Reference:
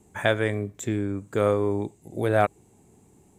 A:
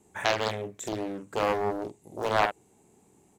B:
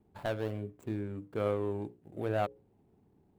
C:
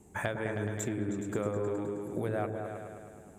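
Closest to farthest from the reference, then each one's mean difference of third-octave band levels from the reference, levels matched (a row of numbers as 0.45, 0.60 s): B, A, C; 3.0, 5.5, 9.5 dB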